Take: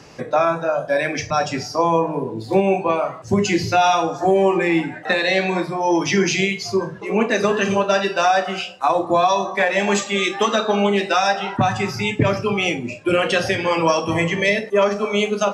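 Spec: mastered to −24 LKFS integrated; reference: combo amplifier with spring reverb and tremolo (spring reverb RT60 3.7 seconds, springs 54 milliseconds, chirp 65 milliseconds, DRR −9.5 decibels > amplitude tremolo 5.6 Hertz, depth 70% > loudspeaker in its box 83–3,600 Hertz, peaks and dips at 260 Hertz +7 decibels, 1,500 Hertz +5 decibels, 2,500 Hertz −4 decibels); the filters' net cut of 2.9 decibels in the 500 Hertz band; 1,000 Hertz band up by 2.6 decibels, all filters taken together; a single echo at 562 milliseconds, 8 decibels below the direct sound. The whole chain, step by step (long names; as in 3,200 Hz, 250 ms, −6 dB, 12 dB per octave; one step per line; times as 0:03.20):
parametric band 500 Hz −6 dB
parametric band 1,000 Hz +5 dB
single-tap delay 562 ms −8 dB
spring reverb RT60 3.7 s, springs 54 ms, chirp 65 ms, DRR −9.5 dB
amplitude tremolo 5.6 Hz, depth 70%
loudspeaker in its box 83–3,600 Hz, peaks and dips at 260 Hz +7 dB, 1,500 Hz +5 dB, 2,500 Hz −4 dB
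level −13 dB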